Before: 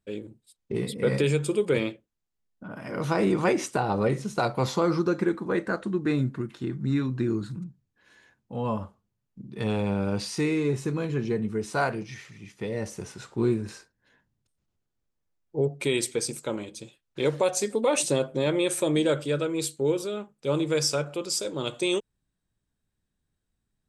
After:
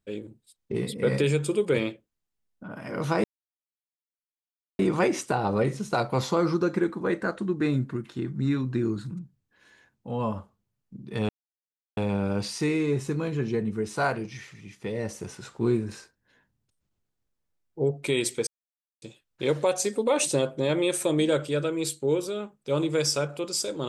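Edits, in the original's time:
3.24 s: insert silence 1.55 s
9.74 s: insert silence 0.68 s
16.24–16.79 s: mute

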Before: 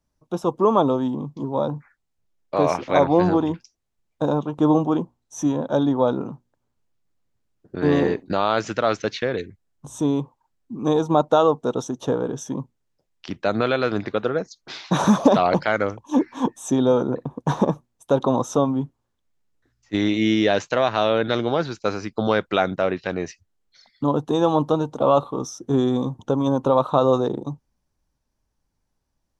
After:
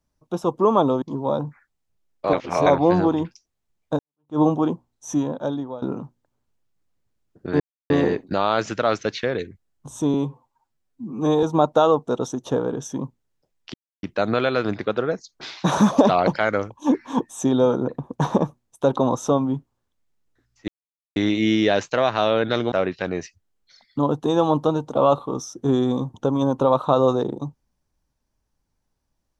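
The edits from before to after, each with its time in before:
1.02–1.31 s: delete
2.62–2.95 s: reverse
4.28–4.68 s: fade in exponential
5.41–6.11 s: fade out, to -20.5 dB
7.89 s: insert silence 0.30 s
10.13–10.99 s: stretch 1.5×
13.30 s: insert silence 0.29 s
19.95 s: insert silence 0.48 s
21.51–22.77 s: delete

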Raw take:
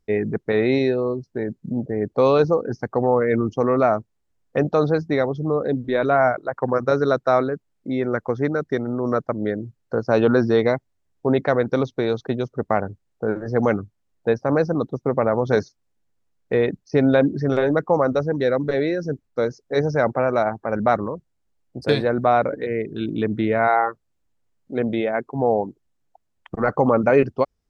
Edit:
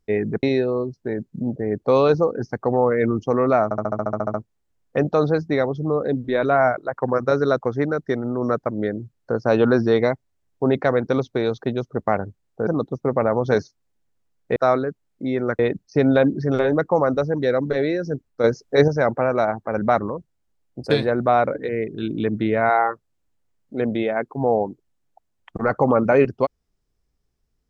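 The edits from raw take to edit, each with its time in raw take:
0.43–0.73 s: delete
3.94 s: stutter 0.07 s, 11 plays
7.21–8.24 s: move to 16.57 s
13.30–14.68 s: delete
19.42–19.86 s: gain +5.5 dB

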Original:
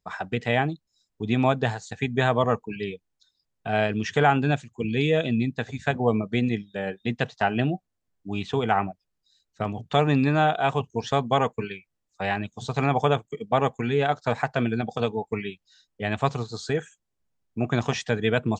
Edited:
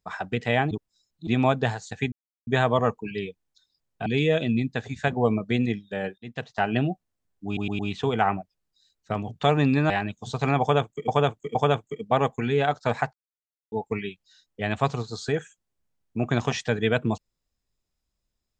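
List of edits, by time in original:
0.71–1.27 s: reverse
2.12 s: insert silence 0.35 s
3.71–4.89 s: delete
7.01–7.54 s: fade in linear, from -21.5 dB
8.29 s: stutter 0.11 s, 4 plays
10.40–12.25 s: delete
12.96–13.43 s: loop, 3 plays
14.54–15.13 s: mute

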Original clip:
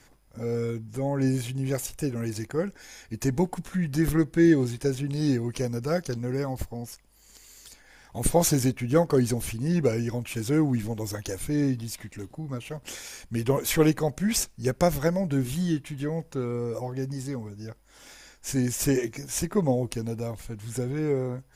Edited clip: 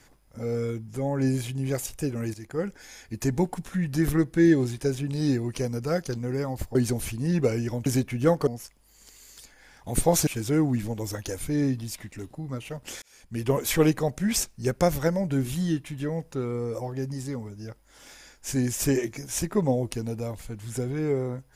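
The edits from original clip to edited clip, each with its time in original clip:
2.34–2.66 s: fade in, from -12.5 dB
6.75–8.55 s: swap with 9.16–10.27 s
13.02–13.51 s: fade in

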